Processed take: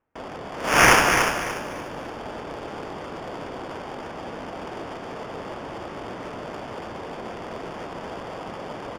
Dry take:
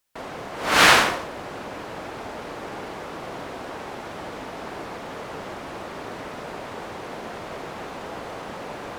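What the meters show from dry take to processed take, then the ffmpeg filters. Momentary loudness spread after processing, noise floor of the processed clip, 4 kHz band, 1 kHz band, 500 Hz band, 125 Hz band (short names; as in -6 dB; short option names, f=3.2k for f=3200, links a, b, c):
18 LU, -37 dBFS, -4.5 dB, +0.5 dB, +1.5 dB, +3.5 dB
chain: -af "acrusher=samples=11:mix=1:aa=0.000001,adynamicsmooth=sensitivity=4.5:basefreq=1.7k,aecho=1:1:292|584|876|1168:0.501|0.15|0.0451|0.0135"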